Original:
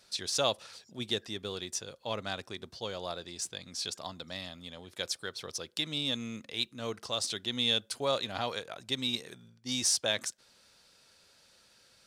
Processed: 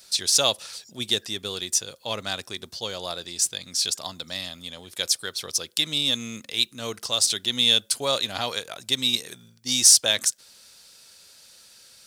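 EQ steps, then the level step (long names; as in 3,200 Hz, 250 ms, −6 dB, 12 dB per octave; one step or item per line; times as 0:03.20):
high-shelf EQ 3,000 Hz +10 dB
high-shelf EQ 10,000 Hz +7.5 dB
+3.5 dB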